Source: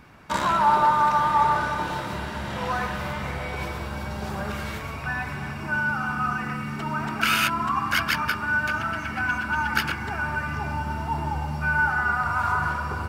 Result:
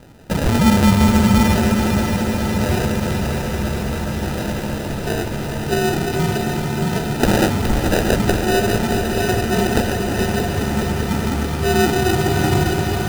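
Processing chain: sample-and-hold 40×; on a send: multi-head echo 0.209 s, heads second and third, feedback 74%, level -8.5 dB; on the sum: gain +6 dB

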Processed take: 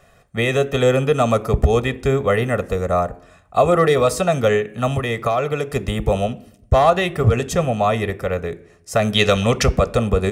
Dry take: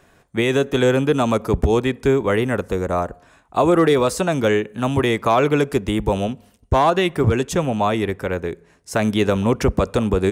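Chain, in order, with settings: 4.95–5.76 compressor, threshold -18 dBFS, peak gain reduction 6.5 dB; 9.14–9.66 bell 4100 Hz +11.5 dB 2.2 oct; reverb RT60 0.65 s, pre-delay 4 ms, DRR 15.5 dB; gain -1 dB

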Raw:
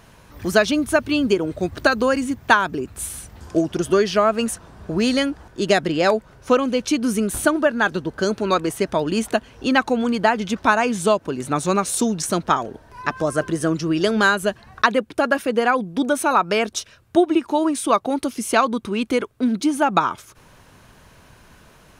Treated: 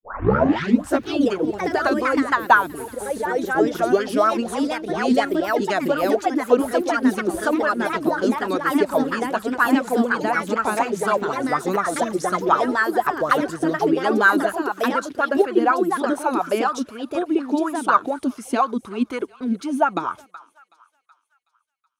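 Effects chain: tape start at the beginning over 1.06 s; gate -36 dBFS, range -53 dB; echoes that change speed 94 ms, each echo +2 st, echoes 3; thinning echo 0.374 s, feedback 54%, high-pass 990 Hz, level -20 dB; LFO bell 4.1 Hz 250–1500 Hz +16 dB; gain -10 dB

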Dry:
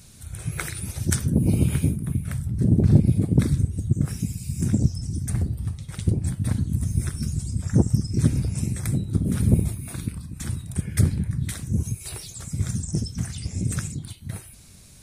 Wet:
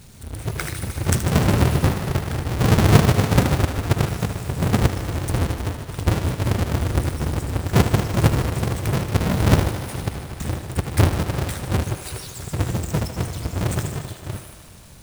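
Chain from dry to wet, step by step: half-waves squared off; thinning echo 76 ms, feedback 83%, high-pass 190 Hz, level -11 dB; gain -1.5 dB

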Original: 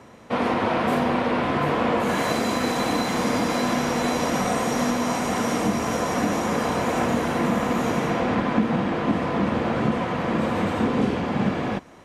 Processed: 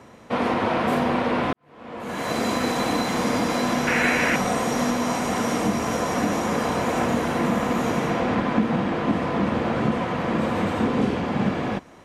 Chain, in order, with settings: 1.53–2.43 fade in quadratic; 3.87–4.36 band shelf 2000 Hz +12 dB 1.1 oct

